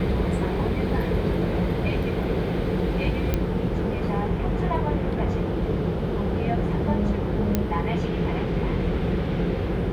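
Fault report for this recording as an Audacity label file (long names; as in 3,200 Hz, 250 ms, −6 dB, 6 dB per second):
3.340000	3.340000	click −10 dBFS
7.550000	7.550000	click −8 dBFS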